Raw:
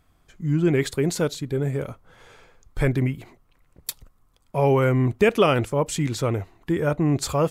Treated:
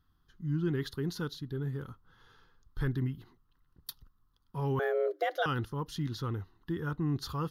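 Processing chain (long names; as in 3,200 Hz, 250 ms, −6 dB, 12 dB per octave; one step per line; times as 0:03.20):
phaser with its sweep stopped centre 2,300 Hz, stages 6
0:04.79–0:05.46: frequency shifter +290 Hz
level −8.5 dB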